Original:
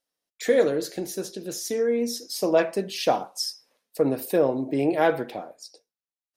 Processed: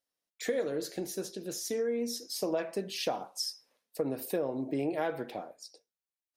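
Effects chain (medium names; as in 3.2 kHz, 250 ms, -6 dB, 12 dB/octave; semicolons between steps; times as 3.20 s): compression 5:1, threshold -23 dBFS, peak gain reduction 8.5 dB; trim -5 dB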